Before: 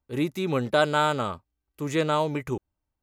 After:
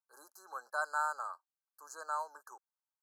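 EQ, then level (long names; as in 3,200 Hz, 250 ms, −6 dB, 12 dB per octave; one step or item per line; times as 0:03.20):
high-pass filter 880 Hz 24 dB per octave
linear-phase brick-wall band-stop 1,700–4,000 Hz
parametric band 3,800 Hz −5.5 dB 0.88 octaves
−7.5 dB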